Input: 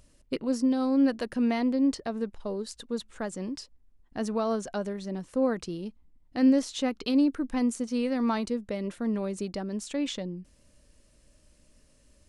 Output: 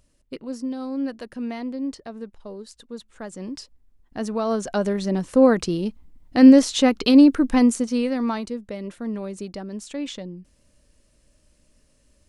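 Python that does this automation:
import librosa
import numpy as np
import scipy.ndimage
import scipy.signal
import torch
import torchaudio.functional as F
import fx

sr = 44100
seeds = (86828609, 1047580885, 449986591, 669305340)

y = fx.gain(x, sr, db=fx.line((3.1, -4.0), (3.58, 3.0), (4.37, 3.0), (4.95, 11.0), (7.55, 11.0), (8.47, 0.0)))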